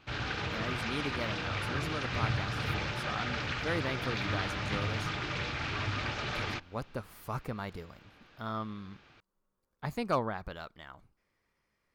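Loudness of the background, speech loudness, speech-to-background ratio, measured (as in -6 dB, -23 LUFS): -34.5 LUFS, -39.5 LUFS, -5.0 dB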